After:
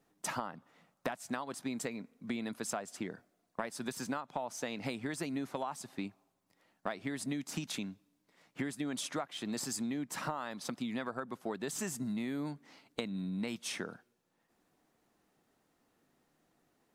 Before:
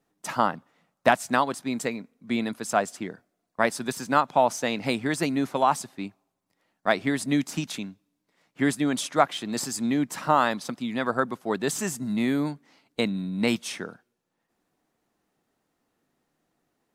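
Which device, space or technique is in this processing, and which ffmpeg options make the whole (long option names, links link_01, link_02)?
serial compression, leveller first: -af "acompressor=threshold=-24dB:ratio=2,acompressor=threshold=-36dB:ratio=6,volume=1dB"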